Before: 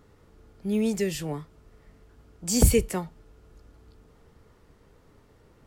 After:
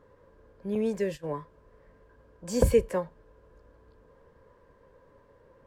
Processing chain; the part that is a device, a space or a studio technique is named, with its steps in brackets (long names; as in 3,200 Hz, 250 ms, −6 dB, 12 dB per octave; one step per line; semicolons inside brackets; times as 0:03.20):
inside a helmet (high-shelf EQ 4,100 Hz −9 dB; hollow resonant body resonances 540/1,000/1,600 Hz, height 17 dB, ringing for 40 ms)
0:00.75–0:01.37: noise gate −29 dBFS, range −17 dB
level −6 dB